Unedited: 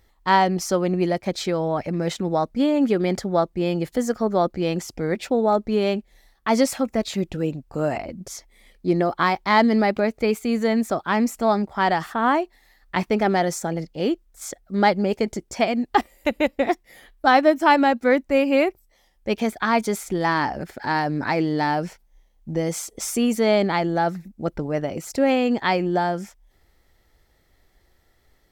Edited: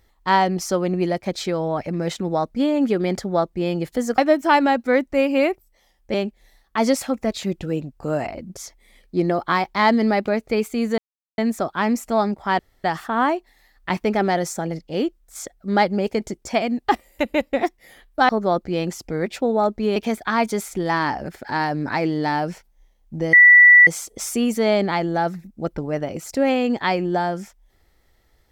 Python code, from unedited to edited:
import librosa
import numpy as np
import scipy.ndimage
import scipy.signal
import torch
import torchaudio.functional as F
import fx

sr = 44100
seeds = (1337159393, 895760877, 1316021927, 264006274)

y = fx.edit(x, sr, fx.swap(start_s=4.18, length_s=1.67, other_s=17.35, other_length_s=1.96),
    fx.insert_silence(at_s=10.69, length_s=0.4),
    fx.insert_room_tone(at_s=11.9, length_s=0.25),
    fx.insert_tone(at_s=22.68, length_s=0.54, hz=1960.0, db=-6.0), tone=tone)